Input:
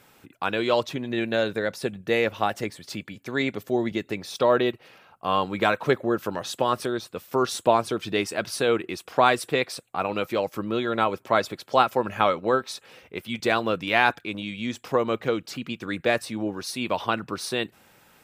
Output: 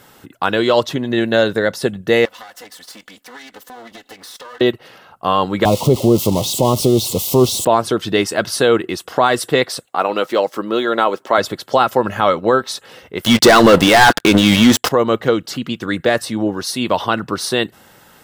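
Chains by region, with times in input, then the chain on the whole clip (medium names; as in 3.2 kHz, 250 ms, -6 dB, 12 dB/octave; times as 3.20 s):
2.25–4.61 s: comb filter that takes the minimum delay 4 ms + high-pass 1 kHz 6 dB/octave + compression 12:1, threshold -42 dBFS
5.65–7.65 s: zero-crossing glitches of -14 dBFS + Butterworth band-stop 1.6 kHz, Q 0.99 + RIAA curve playback
9.85–11.38 s: median filter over 3 samples + high-pass 290 Hz
13.24–14.89 s: peaking EQ 61 Hz -4 dB 1.7 oct + waveshaping leveller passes 5
whole clip: band-stop 2.4 kHz, Q 5.6; loudness maximiser +11 dB; trim -1 dB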